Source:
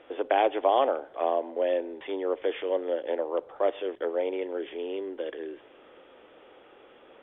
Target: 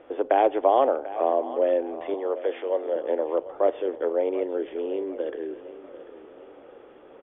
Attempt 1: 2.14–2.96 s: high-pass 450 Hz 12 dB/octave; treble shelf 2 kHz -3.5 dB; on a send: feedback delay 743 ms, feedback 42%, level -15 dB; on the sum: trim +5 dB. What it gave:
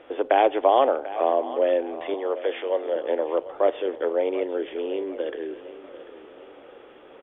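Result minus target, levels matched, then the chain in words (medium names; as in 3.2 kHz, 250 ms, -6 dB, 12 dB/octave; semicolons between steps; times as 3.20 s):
4 kHz band +7.0 dB
2.14–2.96 s: high-pass 450 Hz 12 dB/octave; treble shelf 2 kHz -15 dB; on a send: feedback delay 743 ms, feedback 42%, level -15 dB; on the sum: trim +5 dB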